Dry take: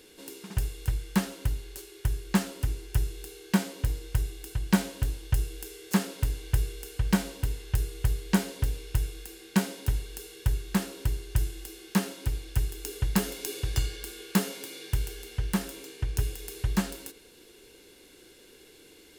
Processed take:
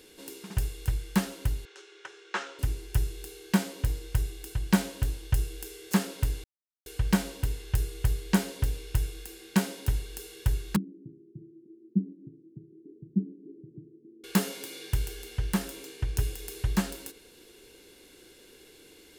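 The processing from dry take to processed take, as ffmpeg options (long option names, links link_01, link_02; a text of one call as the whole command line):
ffmpeg -i in.wav -filter_complex "[0:a]asettb=1/sr,asplit=3[link_01][link_02][link_03];[link_01]atrim=end=1.654[link_04];[link_02]atrim=start=1.65:end=2.59,asetpts=PTS-STARTPTS,afade=type=in:duration=0.004:curve=qsin,afade=type=out:start_time=0.936:duration=0.004:curve=qsin,highpass=frequency=420:width=0.5412,highpass=frequency=420:width=1.3066,equalizer=frequency=640:width_type=q:width=4:gain=-7,equalizer=frequency=1400:width_type=q:width=4:gain=7,equalizer=frequency=4600:width_type=q:width=4:gain=-8,lowpass=frequency=5800:width=0.5412,lowpass=frequency=5800:width=1.3066[link_05];[link_03]atrim=start=2.586[link_06];[link_04][link_05]acrossfade=duration=0.004:curve1=hsin:curve2=qsin[link_07];[link_07][link_06]acrossfade=duration=0.004:curve1=qsin:curve2=hsin,asettb=1/sr,asplit=3[link_08][link_09][link_10];[link_08]atrim=end=10.764[link_11];[link_09]atrim=start=10.76:end=14.24,asetpts=PTS-STARTPTS,afade=type=in:duration=0.004:curve=qsin,afade=type=out:start_time=3.476:duration=0.004:curve=qsin,asuperpass=centerf=230:order=8:qfactor=1.2[link_12];[link_10]atrim=start=14.236[link_13];[link_11][link_12]acrossfade=duration=0.004:curve1=hsin:curve2=qsin[link_14];[link_14][link_13]acrossfade=duration=0.004:curve1=qsin:curve2=hsin,asplit=3[link_15][link_16][link_17];[link_15]atrim=end=6.44,asetpts=PTS-STARTPTS,afade=type=out:start_time=6.436:duration=0.004:curve=hsin[link_18];[link_16]atrim=start=6.44:end=6.86,asetpts=PTS-STARTPTS,volume=0[link_19];[link_17]atrim=start=6.86,asetpts=PTS-STARTPTS,afade=type=in:duration=0.004:curve=hsin[link_20];[link_18][link_19][link_20]concat=n=3:v=0:a=1" out.wav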